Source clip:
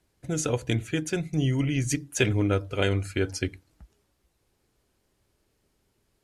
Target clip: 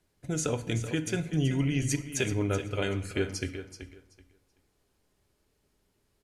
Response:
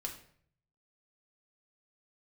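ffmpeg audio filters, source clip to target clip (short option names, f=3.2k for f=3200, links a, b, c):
-filter_complex "[0:a]alimiter=limit=-14.5dB:level=0:latency=1:release=199,aecho=1:1:380|760|1140:0.282|0.0535|0.0102,asplit=2[a][b];[1:a]atrim=start_sample=2205,asetrate=34839,aresample=44100[c];[b][c]afir=irnorm=-1:irlink=0,volume=-5dB[d];[a][d]amix=inputs=2:normalize=0,volume=-5.5dB"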